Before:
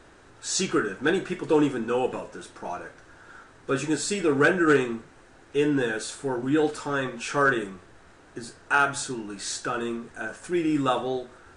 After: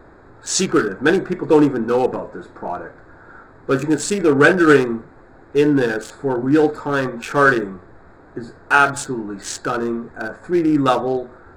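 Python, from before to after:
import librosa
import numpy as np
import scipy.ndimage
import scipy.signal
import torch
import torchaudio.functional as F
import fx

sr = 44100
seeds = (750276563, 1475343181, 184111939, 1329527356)

y = fx.wiener(x, sr, points=15)
y = F.gain(torch.from_numpy(y), 8.5).numpy()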